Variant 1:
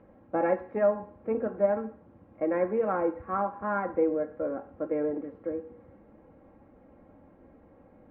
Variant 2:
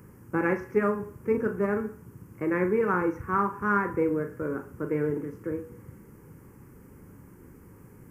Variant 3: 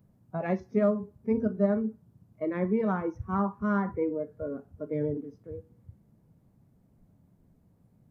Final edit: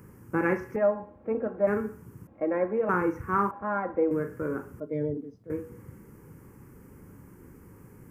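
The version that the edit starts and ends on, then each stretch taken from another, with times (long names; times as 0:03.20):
2
0:00.76–0:01.67: punch in from 1
0:02.27–0:02.89: punch in from 1
0:03.51–0:04.11: punch in from 1
0:04.80–0:05.50: punch in from 3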